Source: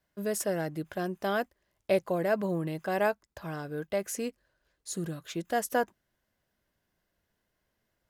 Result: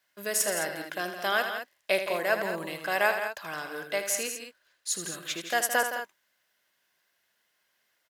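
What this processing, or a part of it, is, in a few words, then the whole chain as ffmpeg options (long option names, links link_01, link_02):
filter by subtraction: -filter_complex "[0:a]aecho=1:1:78.72|166.2|212.8:0.355|0.316|0.282,asplit=2[link_01][link_02];[link_02]lowpass=2300,volume=-1[link_03];[link_01][link_03]amix=inputs=2:normalize=0,volume=7.5dB"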